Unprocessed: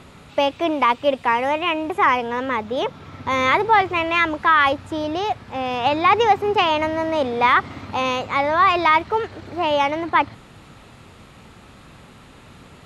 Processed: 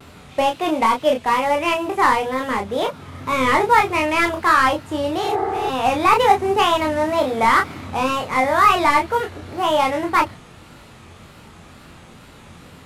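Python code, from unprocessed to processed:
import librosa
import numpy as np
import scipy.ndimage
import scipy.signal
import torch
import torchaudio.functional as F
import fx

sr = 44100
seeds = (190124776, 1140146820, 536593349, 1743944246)

y = fx.cvsd(x, sr, bps=64000)
y = fx.wow_flutter(y, sr, seeds[0], rate_hz=2.1, depth_cents=120.0)
y = fx.room_early_taps(y, sr, ms=(23, 35), db=(-5.0, -6.5))
y = fx.spec_repair(y, sr, seeds[1], start_s=5.25, length_s=0.42, low_hz=220.0, high_hz=2200.0, source='before')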